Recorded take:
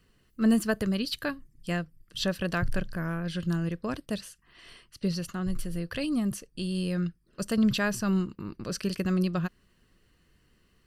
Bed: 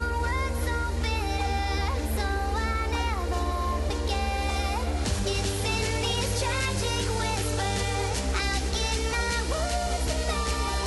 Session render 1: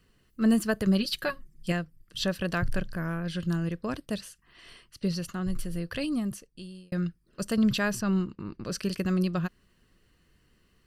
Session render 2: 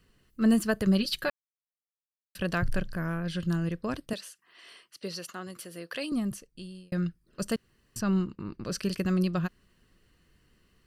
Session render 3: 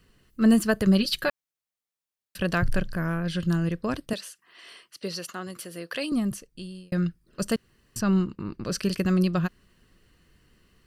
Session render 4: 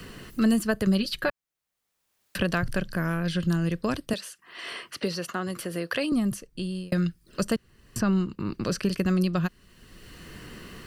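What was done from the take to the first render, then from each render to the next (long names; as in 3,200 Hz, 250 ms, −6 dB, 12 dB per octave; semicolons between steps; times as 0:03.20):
0:00.86–0:01.72: comb filter 5.4 ms, depth 82%; 0:06.03–0:06.92: fade out; 0:08.01–0:08.66: high-frequency loss of the air 67 metres
0:01.30–0:02.35: silence; 0:04.13–0:06.12: high-pass filter 390 Hz; 0:07.56–0:07.96: fill with room tone
level +4 dB
multiband upward and downward compressor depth 70%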